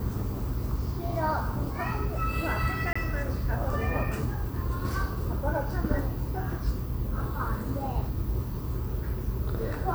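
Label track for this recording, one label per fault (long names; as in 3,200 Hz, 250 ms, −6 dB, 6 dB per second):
2.930000	2.960000	drop-out 25 ms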